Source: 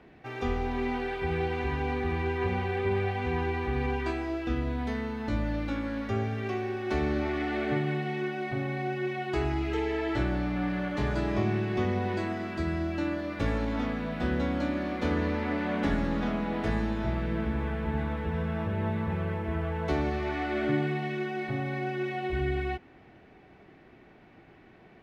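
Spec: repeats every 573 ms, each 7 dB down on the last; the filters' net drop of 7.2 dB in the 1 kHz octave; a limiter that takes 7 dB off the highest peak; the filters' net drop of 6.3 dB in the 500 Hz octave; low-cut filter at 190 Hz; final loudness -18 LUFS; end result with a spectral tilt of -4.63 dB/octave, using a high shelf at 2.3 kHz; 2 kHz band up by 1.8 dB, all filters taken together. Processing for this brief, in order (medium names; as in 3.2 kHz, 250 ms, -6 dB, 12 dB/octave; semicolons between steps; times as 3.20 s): high-pass 190 Hz; peaking EQ 500 Hz -7.5 dB; peaking EQ 1 kHz -7.5 dB; peaking EQ 2 kHz +7 dB; treble shelf 2.3 kHz -4.5 dB; peak limiter -25.5 dBFS; feedback delay 573 ms, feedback 45%, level -7 dB; trim +16.5 dB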